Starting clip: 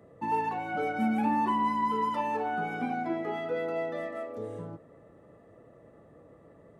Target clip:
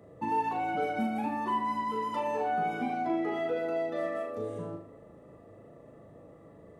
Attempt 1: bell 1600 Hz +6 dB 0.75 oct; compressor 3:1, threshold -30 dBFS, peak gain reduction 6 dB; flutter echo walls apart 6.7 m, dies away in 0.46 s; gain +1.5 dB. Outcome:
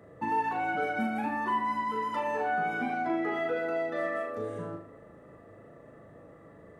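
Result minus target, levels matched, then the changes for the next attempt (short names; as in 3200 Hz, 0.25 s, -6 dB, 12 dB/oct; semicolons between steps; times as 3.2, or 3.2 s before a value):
2000 Hz band +6.0 dB
change: bell 1600 Hz -4 dB 0.75 oct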